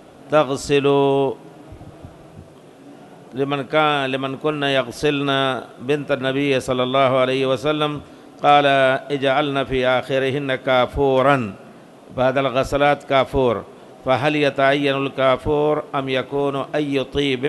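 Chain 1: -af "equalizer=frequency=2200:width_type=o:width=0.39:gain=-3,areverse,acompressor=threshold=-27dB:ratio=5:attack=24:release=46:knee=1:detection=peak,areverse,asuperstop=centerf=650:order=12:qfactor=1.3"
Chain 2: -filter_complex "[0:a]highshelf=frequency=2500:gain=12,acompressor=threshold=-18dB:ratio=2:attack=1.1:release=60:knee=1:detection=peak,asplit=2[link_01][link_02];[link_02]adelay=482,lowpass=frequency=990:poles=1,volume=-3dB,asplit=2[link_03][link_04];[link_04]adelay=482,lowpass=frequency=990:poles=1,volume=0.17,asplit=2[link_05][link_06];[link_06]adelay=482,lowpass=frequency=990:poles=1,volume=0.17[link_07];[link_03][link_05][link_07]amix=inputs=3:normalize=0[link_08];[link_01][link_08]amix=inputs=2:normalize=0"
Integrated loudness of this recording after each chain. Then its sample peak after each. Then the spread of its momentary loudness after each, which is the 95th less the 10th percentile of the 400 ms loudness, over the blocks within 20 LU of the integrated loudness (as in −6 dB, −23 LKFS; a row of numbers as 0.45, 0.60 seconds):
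−28.5, −20.5 LKFS; −13.5, −5.5 dBFS; 15, 8 LU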